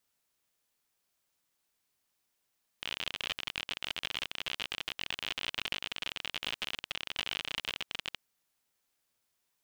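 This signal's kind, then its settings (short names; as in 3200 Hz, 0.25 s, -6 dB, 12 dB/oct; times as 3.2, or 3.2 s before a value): random clicks 53/s -18.5 dBFS 5.36 s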